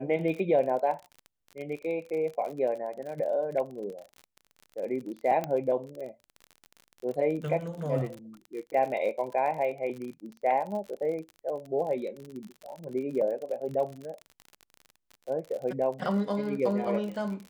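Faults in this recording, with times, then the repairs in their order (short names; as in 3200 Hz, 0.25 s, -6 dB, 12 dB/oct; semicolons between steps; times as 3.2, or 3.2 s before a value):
crackle 45/s -36 dBFS
5.44 pop -18 dBFS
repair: de-click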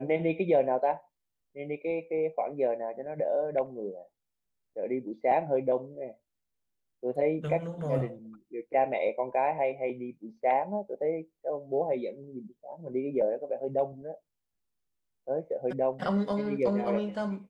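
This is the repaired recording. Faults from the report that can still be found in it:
none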